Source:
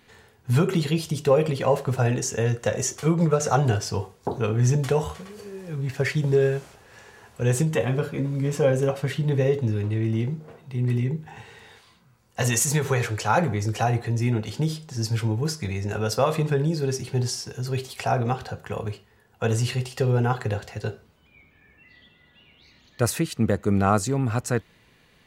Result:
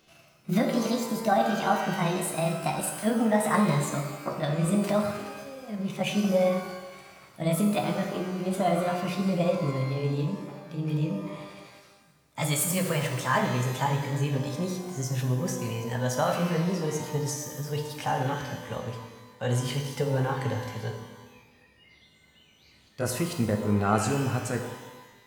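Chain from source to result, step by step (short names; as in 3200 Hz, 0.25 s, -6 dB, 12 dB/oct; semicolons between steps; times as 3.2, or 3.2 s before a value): gliding pitch shift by +7 st ending unshifted; shimmer reverb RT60 1.2 s, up +12 st, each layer -8 dB, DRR 4.5 dB; gain -4 dB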